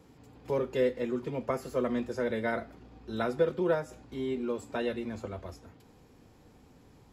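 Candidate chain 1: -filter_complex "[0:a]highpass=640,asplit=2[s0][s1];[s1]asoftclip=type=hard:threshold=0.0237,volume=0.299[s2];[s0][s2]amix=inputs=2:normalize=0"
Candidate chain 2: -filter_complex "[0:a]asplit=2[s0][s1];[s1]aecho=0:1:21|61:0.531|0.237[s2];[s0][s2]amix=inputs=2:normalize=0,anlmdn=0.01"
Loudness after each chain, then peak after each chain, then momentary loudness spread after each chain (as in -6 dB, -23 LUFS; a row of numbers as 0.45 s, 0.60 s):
-36.5 LUFS, -31.5 LUFS; -20.0 dBFS, -15.5 dBFS; 14 LU, 12 LU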